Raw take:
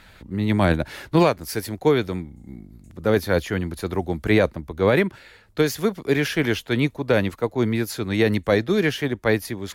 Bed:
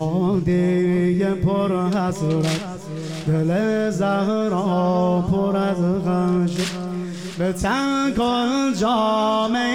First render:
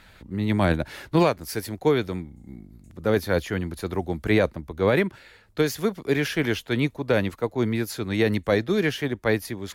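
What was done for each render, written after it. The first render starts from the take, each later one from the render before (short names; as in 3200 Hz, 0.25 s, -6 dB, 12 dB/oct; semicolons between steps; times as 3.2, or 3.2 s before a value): gain -2.5 dB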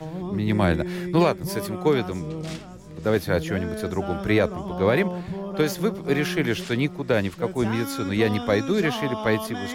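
add bed -12 dB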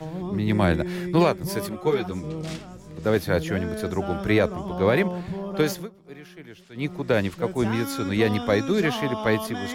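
1.69–2.24 ensemble effect; 5.71–6.91 dip -20 dB, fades 0.17 s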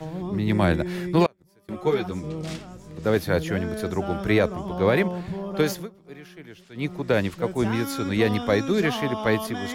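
1.26–1.69 flipped gate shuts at -24 dBFS, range -32 dB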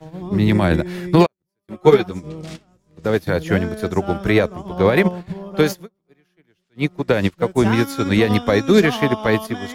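maximiser +15 dB; upward expander 2.5:1, over -29 dBFS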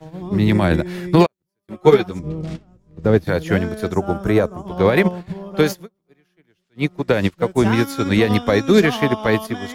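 2.19–3.25 tilt -2.5 dB/oct; 3.95–4.67 band shelf 3000 Hz -8 dB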